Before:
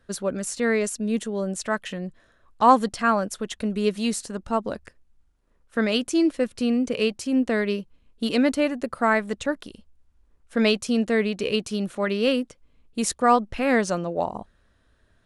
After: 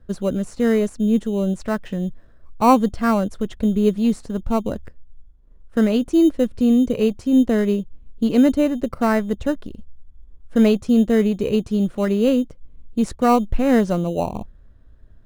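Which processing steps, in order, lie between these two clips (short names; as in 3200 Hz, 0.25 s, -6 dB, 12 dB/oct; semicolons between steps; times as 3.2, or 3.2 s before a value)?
tilt -3.5 dB/oct; in parallel at -11 dB: sample-and-hold 13×; on the sum: gain -2 dB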